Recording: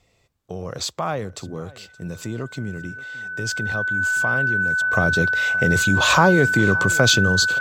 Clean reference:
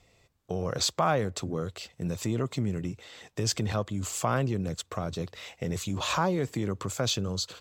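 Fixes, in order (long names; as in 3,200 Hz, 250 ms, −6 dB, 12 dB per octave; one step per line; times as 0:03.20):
notch filter 1,500 Hz, Q 30
echo removal 572 ms −21 dB
level 0 dB, from 0:04.93 −11.5 dB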